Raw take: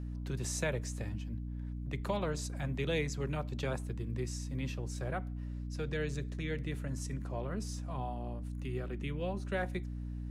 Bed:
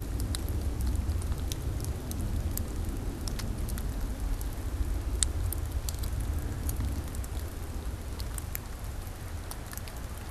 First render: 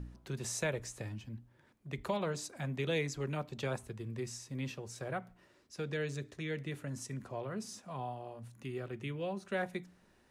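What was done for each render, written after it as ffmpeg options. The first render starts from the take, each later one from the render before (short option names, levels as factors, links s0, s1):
-af "bandreject=f=60:t=h:w=4,bandreject=f=120:t=h:w=4,bandreject=f=180:t=h:w=4,bandreject=f=240:t=h:w=4,bandreject=f=300:t=h:w=4"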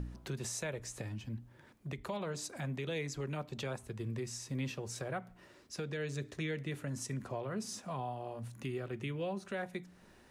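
-filter_complex "[0:a]asplit=2[s0][s1];[s1]acompressor=threshold=0.00447:ratio=6,volume=1.12[s2];[s0][s2]amix=inputs=2:normalize=0,alimiter=level_in=1.78:limit=0.0631:level=0:latency=1:release=331,volume=0.562"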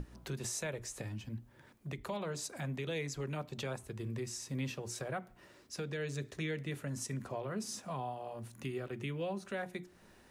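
-af "highshelf=f=11000:g=5,bandreject=f=60:t=h:w=6,bandreject=f=120:t=h:w=6,bandreject=f=180:t=h:w=6,bandreject=f=240:t=h:w=6,bandreject=f=300:t=h:w=6,bandreject=f=360:t=h:w=6"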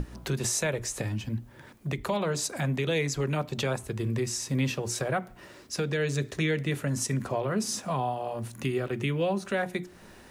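-af "volume=3.35"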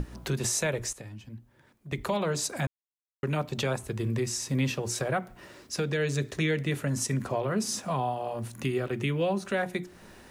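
-filter_complex "[0:a]asplit=5[s0][s1][s2][s3][s4];[s0]atrim=end=0.932[s5];[s1]atrim=start=0.928:end=1.922,asetpts=PTS-STARTPTS,volume=0.266[s6];[s2]atrim=start=1.918:end=2.67,asetpts=PTS-STARTPTS,afade=t=out:st=0.748:d=0.004:c=hsin[s7];[s3]atrim=start=2.67:end=3.23,asetpts=PTS-STARTPTS,volume=0[s8];[s4]atrim=start=3.23,asetpts=PTS-STARTPTS,afade=t=in:d=0.004:c=hsin[s9];[s5][s6]acrossfade=d=0.004:c1=hsin:c2=hsin[s10];[s7][s8][s9]concat=n=3:v=0:a=1[s11];[s10][s11]acrossfade=d=0.004:c1=hsin:c2=hsin"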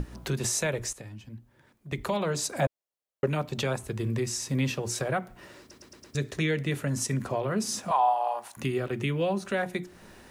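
-filter_complex "[0:a]asettb=1/sr,asplit=3[s0][s1][s2];[s0]atrim=end=2.584[s3];[s1]atrim=start=2.58:end=3.27,asetpts=PTS-STARTPTS,afade=t=in:d=0.004:c=qsin,afade=t=out:st=0.686:d=0.004:c=qsin,equalizer=f=570:w=1.5:g=13[s4];[s2]atrim=start=3.266[s5];[s3][s4]acrossfade=d=0.004:c1=hsin:c2=qsin[s6];[s6][s5]acrossfade=d=0.004:c1=qsin:c2=hsin,asettb=1/sr,asplit=3[s7][s8][s9];[s7]atrim=end=7.914[s10];[s8]atrim=start=7.91:end=8.57,asetpts=PTS-STARTPTS,afade=t=in:d=0.004:c=qsin,afade=t=out:st=0.656:d=0.004:c=qsin,highpass=f=830:t=q:w=3.8[s11];[s9]atrim=start=8.566[s12];[s10][s11]acrossfade=d=0.004:c1=hsin:c2=qsin[s13];[s13][s12]acrossfade=d=0.004:c1=qsin:c2=hsin,asplit=6[s14][s15][s16][s17][s18][s19];[s14]atrim=end=5.712[s20];[s15]atrim=start=5.598:end=5.712[s21];[s16]atrim=start=5.598:end=5.712[s22];[s17]atrim=start=5.598:end=5.712[s23];[s18]atrim=start=5.598:end=5.712[s24];[s19]atrim=start=6.148[s25];[s20][s21]acrossfade=d=0.004:c1=hsin:c2=hsin[s26];[s26][s22]acrossfade=d=0.004:c1=hsin:c2=hsin[s27];[s27][s23]acrossfade=d=0.004:c1=hsin:c2=hsin[s28];[s28][s24]acrossfade=d=0.004:c1=hsin:c2=hsin[s29];[s29][s25]acrossfade=d=0.004:c1=hsin:c2=hsin"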